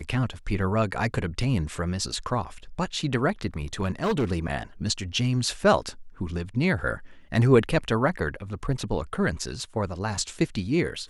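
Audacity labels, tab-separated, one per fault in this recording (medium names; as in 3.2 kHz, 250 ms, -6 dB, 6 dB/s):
3.810000	4.250000	clipped -20 dBFS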